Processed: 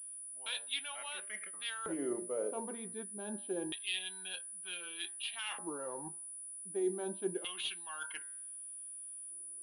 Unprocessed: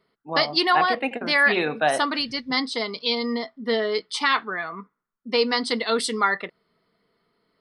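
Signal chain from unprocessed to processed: de-hum 150.3 Hz, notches 17; reverse; compression 6:1, threshold -29 dBFS, peak gain reduction 14 dB; reverse; LFO band-pass square 0.34 Hz 510–3800 Hz; tape speed -21%; class-D stage that switches slowly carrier 9.8 kHz

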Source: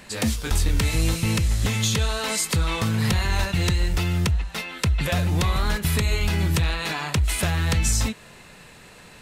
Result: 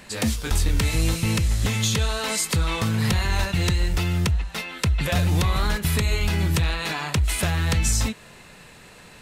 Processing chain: 5.15–5.67 s: three bands compressed up and down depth 70%

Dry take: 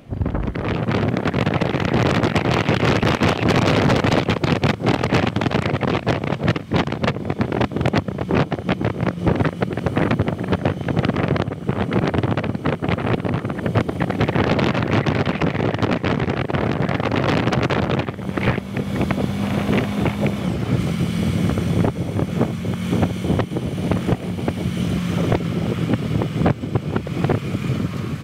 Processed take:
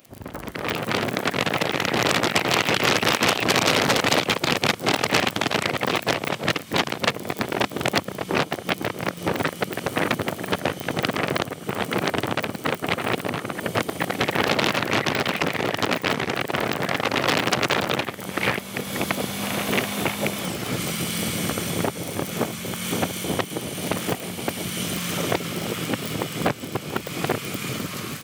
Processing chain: crackle 24 per s -29 dBFS; level rider; RIAA curve recording; trim -7 dB

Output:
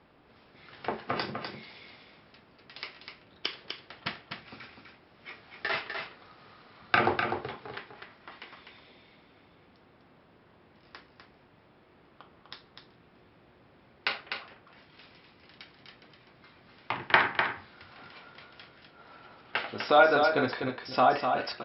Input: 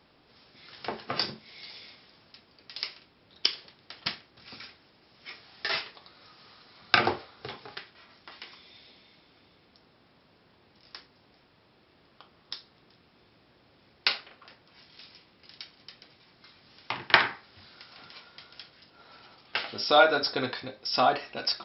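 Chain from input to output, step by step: low-pass 2.4 kHz 12 dB/octave; in parallel at -2 dB: peak limiter -16.5 dBFS, peak gain reduction 11 dB; on the sum: delay 250 ms -6 dB; trim -3 dB

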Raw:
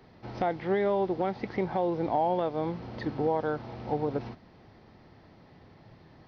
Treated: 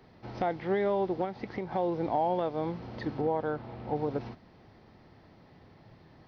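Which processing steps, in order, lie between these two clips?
1.24–1.72 s: compression, threshold -30 dBFS, peak gain reduction 6.5 dB; 3.21–3.96 s: distance through air 150 m; trim -1.5 dB

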